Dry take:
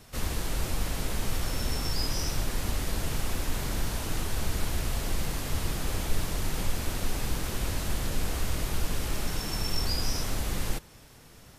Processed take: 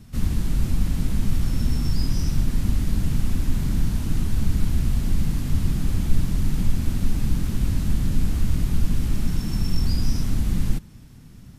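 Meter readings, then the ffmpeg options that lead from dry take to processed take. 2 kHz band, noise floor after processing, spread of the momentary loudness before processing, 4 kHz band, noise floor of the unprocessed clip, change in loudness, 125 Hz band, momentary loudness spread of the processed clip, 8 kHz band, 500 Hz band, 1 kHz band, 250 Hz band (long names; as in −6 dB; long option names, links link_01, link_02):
−4.5 dB, −44 dBFS, 3 LU, −4.0 dB, −52 dBFS, +6.5 dB, +10.0 dB, 2 LU, −4.0 dB, −4.0 dB, −5.5 dB, +10.0 dB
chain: -af "lowshelf=frequency=330:width_type=q:width=1.5:gain=13,volume=-4dB"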